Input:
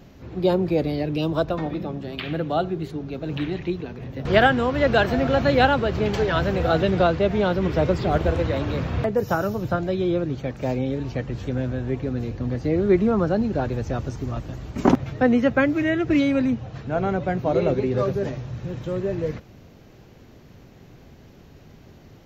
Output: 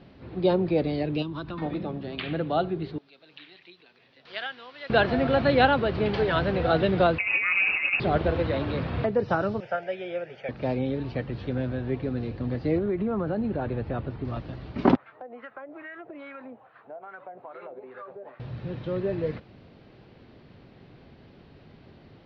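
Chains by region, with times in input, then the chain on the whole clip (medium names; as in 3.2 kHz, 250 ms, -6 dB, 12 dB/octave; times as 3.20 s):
1.22–1.62 s: high-order bell 570 Hz -13 dB 1 oct + compression 4:1, threshold -28 dBFS
2.98–4.90 s: differentiator + upward compressor, threshold -51 dBFS
7.18–8.00 s: compressor with a negative ratio -22 dBFS, ratio -0.5 + frequency inversion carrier 2.7 kHz
9.60–10.49 s: high-pass 360 Hz + treble shelf 2.5 kHz +10.5 dB + static phaser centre 1.1 kHz, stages 6
12.78–14.25 s: boxcar filter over 7 samples + compression 12:1, threshold -20 dBFS
14.96–18.40 s: wah-wah 2.4 Hz 630–1500 Hz, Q 2.6 + tone controls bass -7 dB, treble -8 dB + compression 10:1, threshold -35 dBFS
whole clip: steep low-pass 4.7 kHz 48 dB/octave; bass shelf 68 Hz -9 dB; trim -2 dB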